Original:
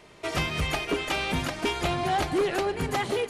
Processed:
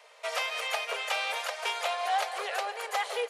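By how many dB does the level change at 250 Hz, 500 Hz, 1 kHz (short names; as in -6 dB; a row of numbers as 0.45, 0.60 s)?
under -30 dB, -7.0 dB, -1.5 dB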